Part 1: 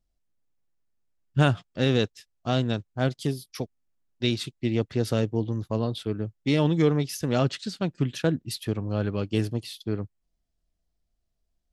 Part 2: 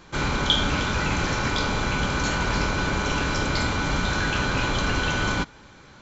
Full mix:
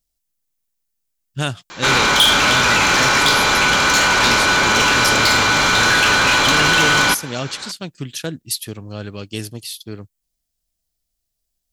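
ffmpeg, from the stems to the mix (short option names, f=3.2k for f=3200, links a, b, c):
-filter_complex "[0:a]volume=-3.5dB[a];[1:a]asplit=2[b][c];[c]highpass=f=720:p=1,volume=22dB,asoftclip=type=tanh:threshold=-6dB[d];[b][d]amix=inputs=2:normalize=0,lowpass=f=1.5k:p=1,volume=-6dB,adelay=1700,volume=-1dB[e];[a][e]amix=inputs=2:normalize=0,crystalizer=i=6:c=0"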